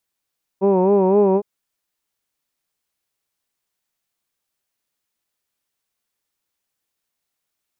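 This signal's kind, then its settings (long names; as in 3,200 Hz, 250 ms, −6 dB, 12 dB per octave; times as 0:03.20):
vowel from formants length 0.81 s, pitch 189 Hz, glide +1 semitone, vibrato 3.9 Hz, F1 450 Hz, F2 920 Hz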